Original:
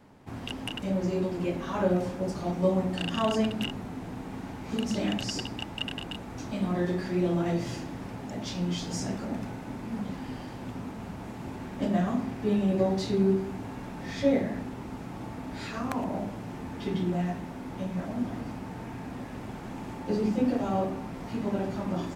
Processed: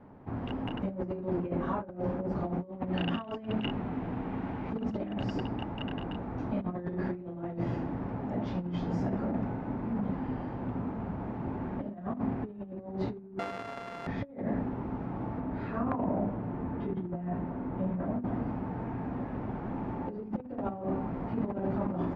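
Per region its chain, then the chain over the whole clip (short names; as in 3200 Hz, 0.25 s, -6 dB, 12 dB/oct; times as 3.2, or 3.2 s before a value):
2.72–4.7 bell 2900 Hz +7.5 dB 1.4 oct + notches 50/100/150 Hz
13.39–14.07 sample sorter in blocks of 64 samples + tilt +4.5 dB/oct
15.4–18.25 high shelf 3200 Hz -8.5 dB + notch 810 Hz, Q 22
whole clip: LPF 1300 Hz 12 dB/oct; negative-ratio compressor -32 dBFS, ratio -0.5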